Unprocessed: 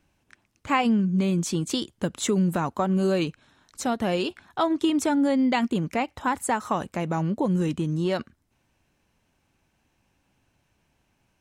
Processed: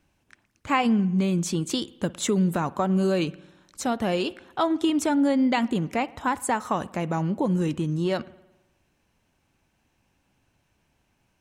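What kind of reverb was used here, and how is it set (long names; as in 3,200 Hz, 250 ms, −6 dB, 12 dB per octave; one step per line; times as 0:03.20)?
spring reverb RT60 1 s, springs 53 ms, chirp 80 ms, DRR 19.5 dB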